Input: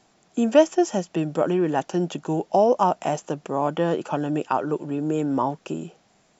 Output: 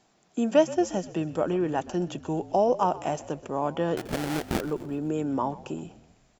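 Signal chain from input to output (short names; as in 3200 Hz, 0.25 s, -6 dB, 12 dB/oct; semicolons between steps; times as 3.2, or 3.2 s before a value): 3.97–4.61 sample-rate reducer 1100 Hz, jitter 20%; frequency-shifting echo 0.126 s, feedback 55%, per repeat -47 Hz, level -17.5 dB; gain -4.5 dB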